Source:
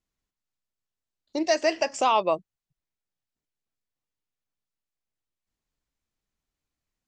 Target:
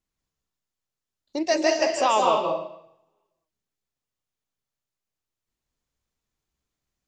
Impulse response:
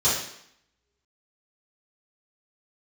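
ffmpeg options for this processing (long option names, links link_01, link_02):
-filter_complex "[0:a]asplit=2[link_01][link_02];[1:a]atrim=start_sample=2205,adelay=147[link_03];[link_02][link_03]afir=irnorm=-1:irlink=0,volume=-16dB[link_04];[link_01][link_04]amix=inputs=2:normalize=0"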